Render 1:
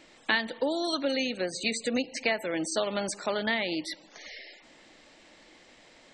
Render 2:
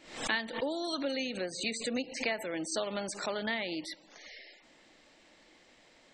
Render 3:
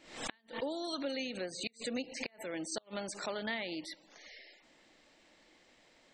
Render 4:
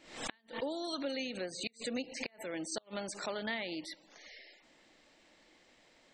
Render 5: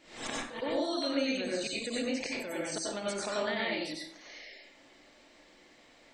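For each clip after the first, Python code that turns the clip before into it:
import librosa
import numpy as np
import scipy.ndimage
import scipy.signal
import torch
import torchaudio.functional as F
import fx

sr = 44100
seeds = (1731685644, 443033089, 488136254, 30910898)

y1 = fx.pre_swell(x, sr, db_per_s=100.0)
y1 = y1 * librosa.db_to_amplitude(-5.5)
y2 = fx.gate_flip(y1, sr, shuts_db=-20.0, range_db=-33)
y2 = y2 * librosa.db_to_amplitude(-3.5)
y3 = y2
y4 = fx.rev_plate(y3, sr, seeds[0], rt60_s=0.59, hf_ratio=0.65, predelay_ms=80, drr_db=-4.5)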